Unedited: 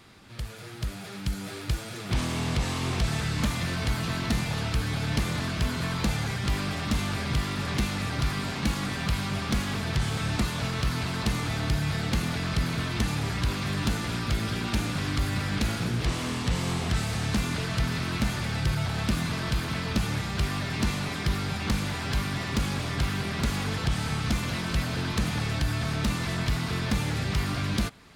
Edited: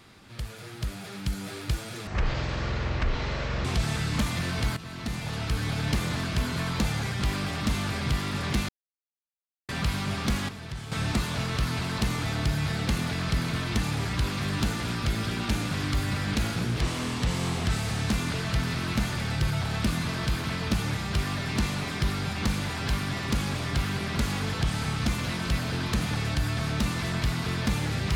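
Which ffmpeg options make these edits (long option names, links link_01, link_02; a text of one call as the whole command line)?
ffmpeg -i in.wav -filter_complex "[0:a]asplit=8[link_01][link_02][link_03][link_04][link_05][link_06][link_07][link_08];[link_01]atrim=end=2.074[link_09];[link_02]atrim=start=2.07:end=2.89,asetpts=PTS-STARTPTS,asetrate=22932,aresample=44100,atrim=end_sample=69542,asetpts=PTS-STARTPTS[link_10];[link_03]atrim=start=2.886:end=4.01,asetpts=PTS-STARTPTS,afade=type=out:start_time=1.12:duration=0.004:curve=hsin:silence=0.211349[link_11];[link_04]atrim=start=4.01:end=7.93,asetpts=PTS-STARTPTS,afade=type=in:duration=0.87:silence=0.211349,afade=type=out:start_time=3.916:duration=0.004:curve=hsin[link_12];[link_05]atrim=start=7.93:end=8.93,asetpts=PTS-STARTPTS,volume=0[link_13];[link_06]atrim=start=8.93:end=9.732,asetpts=PTS-STARTPTS,afade=type=in:duration=0.004:curve=hsin[link_14];[link_07]atrim=start=9.728:end=10.162,asetpts=PTS-STARTPTS,volume=-10dB[link_15];[link_08]atrim=start=10.158[link_16];[link_09][link_10]acrossfade=duration=0.004:curve1=hsin:curve2=hsin[link_17];[link_11][link_12][link_13][link_14]concat=n=4:v=0:a=1[link_18];[link_17][link_18]acrossfade=duration=0.004:curve1=hsin:curve2=hsin[link_19];[link_19][link_15]acrossfade=duration=0.004:curve1=hsin:curve2=hsin[link_20];[link_20][link_16]acrossfade=duration=0.004:curve1=hsin:curve2=hsin" out.wav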